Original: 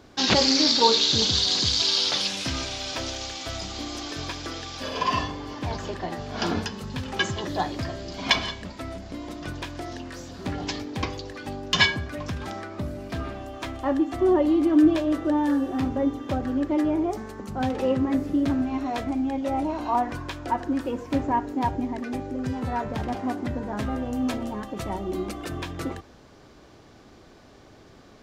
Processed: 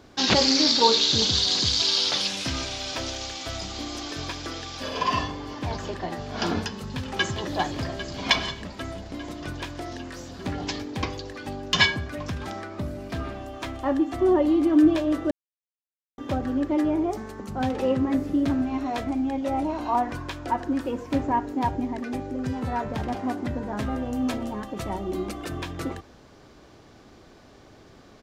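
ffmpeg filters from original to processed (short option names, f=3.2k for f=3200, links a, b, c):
-filter_complex "[0:a]asplit=2[a][b];[b]afade=t=in:st=6.77:d=0.01,afade=t=out:st=7.47:d=0.01,aecho=0:1:400|800|1200|1600|2000|2400|2800|3200|3600|4000|4400|4800:0.334965|0.251224|0.188418|0.141314|0.105985|0.0794889|0.0596167|0.0447125|0.0335344|0.0251508|0.0188631|0.0141473[c];[a][c]amix=inputs=2:normalize=0,asplit=3[d][e][f];[d]atrim=end=15.31,asetpts=PTS-STARTPTS,afade=t=out:st=15.306:d=0.004:c=hsin[g];[e]atrim=start=15.31:end=16.18,asetpts=PTS-STARTPTS,volume=0[h];[f]atrim=start=16.18,asetpts=PTS-STARTPTS,afade=t=in:d=0.004:c=hsin[i];[g][h][i]concat=n=3:v=0:a=1"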